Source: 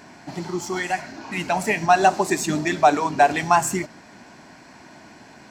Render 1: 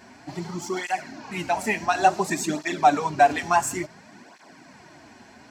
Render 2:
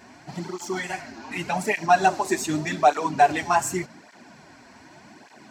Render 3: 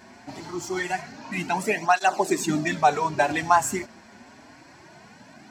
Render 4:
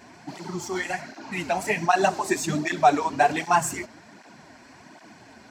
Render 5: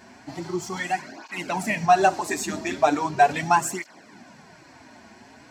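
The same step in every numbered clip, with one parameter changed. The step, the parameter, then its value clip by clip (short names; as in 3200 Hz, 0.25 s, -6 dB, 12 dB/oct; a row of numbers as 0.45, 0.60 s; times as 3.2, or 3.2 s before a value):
tape flanging out of phase, nulls at: 0.57, 0.85, 0.25, 1.3, 0.39 Hz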